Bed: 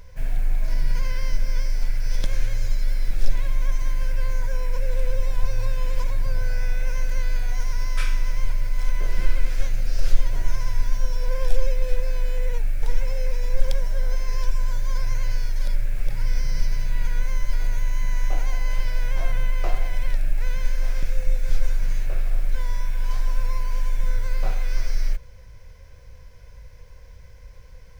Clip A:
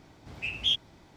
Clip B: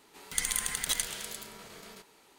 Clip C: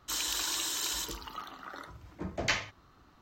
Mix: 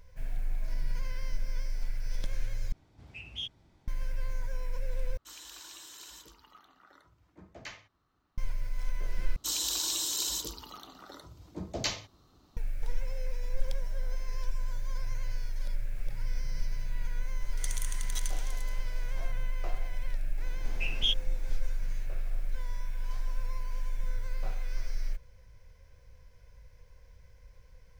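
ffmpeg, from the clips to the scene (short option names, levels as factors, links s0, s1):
-filter_complex "[1:a]asplit=2[s0][s1];[3:a]asplit=2[s2][s3];[0:a]volume=0.299[s4];[s0]lowshelf=f=120:g=11[s5];[s3]firequalizer=gain_entry='entry(460,0);entry(1700,-11);entry(3900,3)':delay=0.05:min_phase=1[s6];[2:a]equalizer=f=5900:w=4.6:g=9[s7];[s1]equalizer=f=500:w=1.2:g=4[s8];[s4]asplit=4[s9][s10][s11][s12];[s9]atrim=end=2.724[s13];[s5]atrim=end=1.16,asetpts=PTS-STARTPTS,volume=0.251[s14];[s10]atrim=start=3.876:end=5.174[s15];[s2]atrim=end=3.21,asetpts=PTS-STARTPTS,volume=0.178[s16];[s11]atrim=start=8.376:end=9.364[s17];[s6]atrim=end=3.21,asetpts=PTS-STARTPTS,volume=0.944[s18];[s12]atrim=start=12.566[s19];[s7]atrim=end=2.38,asetpts=PTS-STARTPTS,volume=0.282,afade=t=in:d=0.004:c=hsin,afade=t=out:st=2.376:d=0.004:c=hsin,adelay=17260[s20];[s8]atrim=end=1.16,asetpts=PTS-STARTPTS,volume=0.75,afade=t=in:d=0.004:c=hsin,afade=t=out:st=1.156:d=0.004:c=hsin,adelay=20380[s21];[s13][s14]acrossfade=d=0.004:c1=hsin:c2=hsin[s22];[s22][s15]acrossfade=d=0.004:c1=hsin:c2=hsin[s23];[s23][s16]acrossfade=d=0.004:c1=hsin:c2=hsin[s24];[s24][s17]acrossfade=d=0.004:c1=hsin:c2=hsin[s25];[s25][s18]acrossfade=d=0.004:c1=hsin:c2=hsin[s26];[s26][s19]acrossfade=d=0.004:c1=hsin:c2=hsin[s27];[s27][s20][s21]amix=inputs=3:normalize=0"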